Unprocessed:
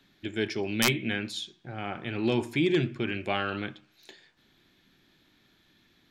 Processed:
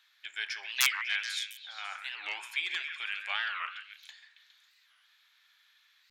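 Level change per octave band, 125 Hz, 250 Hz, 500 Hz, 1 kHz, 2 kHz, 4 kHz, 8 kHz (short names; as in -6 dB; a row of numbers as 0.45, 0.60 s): under -40 dB, under -40 dB, -28.5 dB, -5.0 dB, +1.0 dB, +0.5 dB, +0.5 dB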